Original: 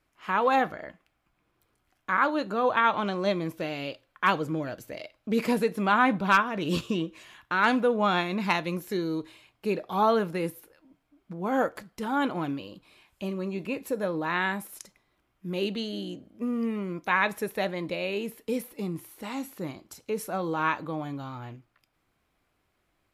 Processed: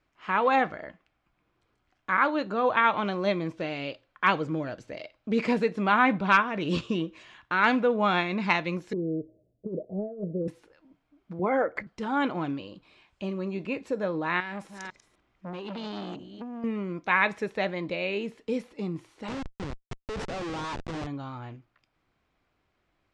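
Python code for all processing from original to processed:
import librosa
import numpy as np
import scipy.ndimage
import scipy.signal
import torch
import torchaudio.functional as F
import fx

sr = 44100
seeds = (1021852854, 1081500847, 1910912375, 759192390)

y = fx.chain(x, sr, fx.cheby_ripple(hz=660.0, ripple_db=3),
    fx.over_compress(threshold_db=-30.0, ratio=-0.5), at=(8.93, 10.48))
y = fx.chain(y, sr, fx.envelope_sharpen(power=1.5),
    fx.peak_eq(hz=2100.0, db=15.0, octaves=0.25),
    fx.band_squash(depth_pct=70), at=(11.39, 11.87))
y = fx.chain(y, sr, fx.reverse_delay(ms=252, wet_db=-14.0),
    fx.over_compress(threshold_db=-33.0, ratio=-1.0),
    fx.transformer_sat(knee_hz=1500.0), at=(14.4, 16.64))
y = fx.chain(y, sr, fx.low_shelf(hz=330.0, db=-4.5),
    fx.schmitt(flips_db=-35.5), at=(19.28, 21.07))
y = scipy.signal.sosfilt(scipy.signal.bessel(6, 5000.0, 'lowpass', norm='mag', fs=sr, output='sos'), y)
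y = fx.dynamic_eq(y, sr, hz=2200.0, q=2.9, threshold_db=-42.0, ratio=4.0, max_db=5)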